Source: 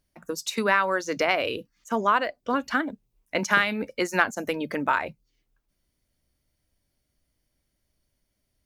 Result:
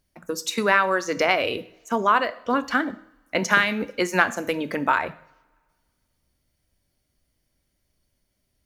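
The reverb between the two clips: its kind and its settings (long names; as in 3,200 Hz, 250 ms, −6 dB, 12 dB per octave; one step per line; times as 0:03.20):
coupled-rooms reverb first 0.59 s, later 1.9 s, from −22 dB, DRR 12.5 dB
level +2.5 dB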